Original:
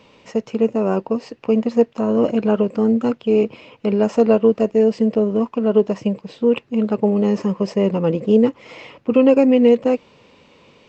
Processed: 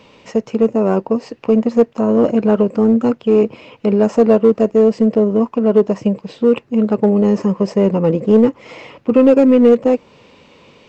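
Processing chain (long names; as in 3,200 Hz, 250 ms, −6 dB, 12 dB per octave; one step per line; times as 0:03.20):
dynamic equaliser 3,300 Hz, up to −6 dB, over −43 dBFS, Q 0.89
in parallel at −4 dB: hard clipping −12 dBFS, distortion −12 dB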